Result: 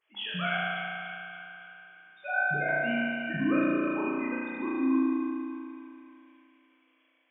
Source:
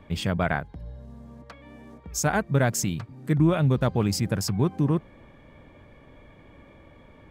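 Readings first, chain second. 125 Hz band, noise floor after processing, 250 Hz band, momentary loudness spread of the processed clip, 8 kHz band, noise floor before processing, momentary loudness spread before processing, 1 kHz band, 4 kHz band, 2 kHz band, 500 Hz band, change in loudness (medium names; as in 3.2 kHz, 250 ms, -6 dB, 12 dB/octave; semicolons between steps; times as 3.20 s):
-18.5 dB, -69 dBFS, -1.5 dB, 17 LU, under -40 dB, -52 dBFS, 12 LU, -2.5 dB, -2.5 dB, +5.0 dB, -5.5 dB, -4.5 dB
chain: formants replaced by sine waves; chorus 0.84 Hz, delay 19 ms, depth 3 ms; tilt shelf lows -6 dB, about 1.4 kHz; spectral noise reduction 15 dB; treble shelf 2.3 kHz +10.5 dB; two-band feedback delay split 860 Hz, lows 105 ms, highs 289 ms, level -9 dB; spring tank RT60 2.4 s, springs 34 ms, chirp 75 ms, DRR -6 dB; trim -6.5 dB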